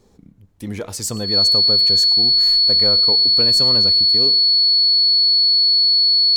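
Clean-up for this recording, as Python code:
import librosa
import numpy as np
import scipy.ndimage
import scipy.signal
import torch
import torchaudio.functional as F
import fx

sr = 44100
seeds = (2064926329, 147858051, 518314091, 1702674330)

y = fx.notch(x, sr, hz=4400.0, q=30.0)
y = fx.fix_echo_inverse(y, sr, delay_ms=106, level_db=-22.5)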